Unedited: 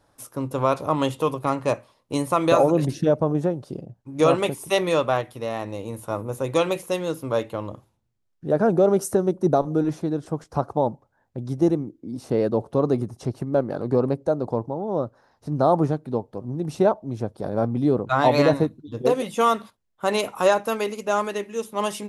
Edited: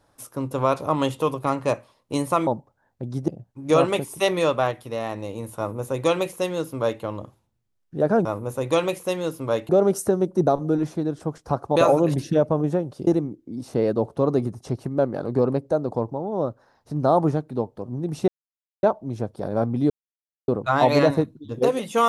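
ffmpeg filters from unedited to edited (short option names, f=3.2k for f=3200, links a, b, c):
-filter_complex "[0:a]asplit=9[a][b][c][d][e][f][g][h][i];[a]atrim=end=2.472[j];[b]atrim=start=10.818:end=11.632[k];[c]atrim=start=3.778:end=8.752[l];[d]atrim=start=6.078:end=7.522[m];[e]atrim=start=8.748:end=10.822[n];[f]atrim=start=2.468:end=3.782[o];[g]atrim=start=11.628:end=16.84,asetpts=PTS-STARTPTS,afade=t=out:st=5.208:d=0.004:c=hsin,apad=pad_dur=0.55[p];[h]atrim=start=16.84:end=17.91,asetpts=PTS-STARTPTS,afade=t=in:d=0.004:c=hsin,afade=t=out:st=1.066:d=0.004:c=hsin,apad=pad_dur=0.58[q];[i]atrim=start=17.91,asetpts=PTS-STARTPTS,afade=t=in:d=0.004:c=hsin[r];[j][k]acrossfade=d=0.004:c1=hsin:c2=hsin[s];[s][l]acrossfade=d=0.004:c1=hsin:c2=hsin[t];[t][m]acrossfade=d=0.004:c1=hsin:c2=hsin[u];[u][n]acrossfade=d=0.004:c1=hsin:c2=hsin[v];[v][o]acrossfade=d=0.004:c1=hsin:c2=hsin[w];[p][q][r]concat=n=3:v=0:a=1[x];[w][x]acrossfade=d=0.004:c1=hsin:c2=hsin"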